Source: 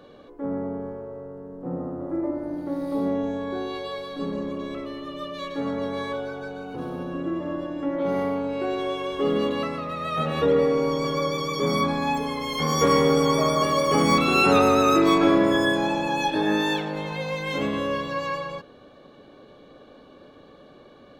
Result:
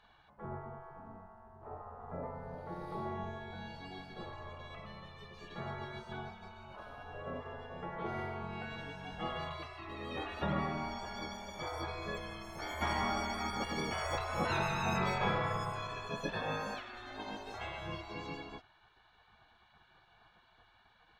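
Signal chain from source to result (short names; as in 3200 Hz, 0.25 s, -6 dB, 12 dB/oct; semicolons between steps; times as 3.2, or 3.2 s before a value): spectral gate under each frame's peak -15 dB weak; LPF 1600 Hz 6 dB/oct; gain -1.5 dB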